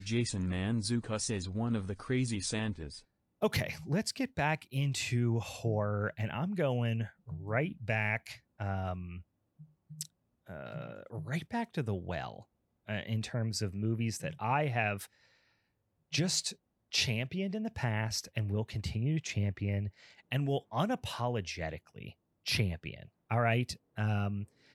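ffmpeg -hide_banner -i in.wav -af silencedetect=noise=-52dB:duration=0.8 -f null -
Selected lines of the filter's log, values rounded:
silence_start: 15.06
silence_end: 16.12 | silence_duration: 1.06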